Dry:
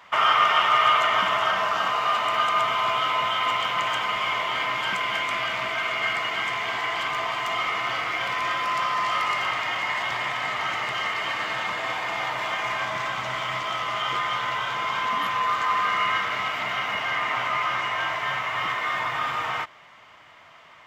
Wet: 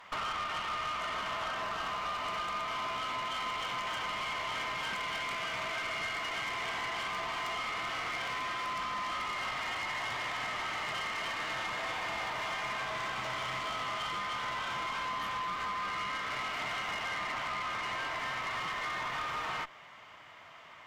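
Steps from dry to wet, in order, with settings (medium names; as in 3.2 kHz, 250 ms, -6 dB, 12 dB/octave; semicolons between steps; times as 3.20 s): compression 10:1, threshold -28 dBFS, peak gain reduction 13.5 dB; valve stage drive 31 dB, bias 0.55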